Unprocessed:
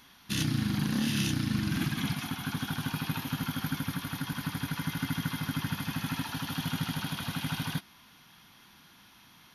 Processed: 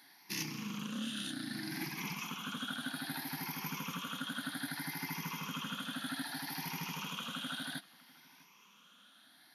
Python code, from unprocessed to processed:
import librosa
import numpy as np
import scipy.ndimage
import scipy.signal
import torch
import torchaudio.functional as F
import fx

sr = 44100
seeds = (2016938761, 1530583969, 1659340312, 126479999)

p1 = fx.spec_ripple(x, sr, per_octave=0.78, drift_hz=0.63, depth_db=13)
p2 = scipy.signal.sosfilt(scipy.signal.butter(4, 180.0, 'highpass', fs=sr, output='sos'), p1)
p3 = fx.low_shelf(p2, sr, hz=500.0, db=-4.5)
p4 = fx.rider(p3, sr, range_db=10, speed_s=0.5)
p5 = p4 + fx.echo_single(p4, sr, ms=650, db=-23.5, dry=0)
y = p5 * 10.0 ** (-6.0 / 20.0)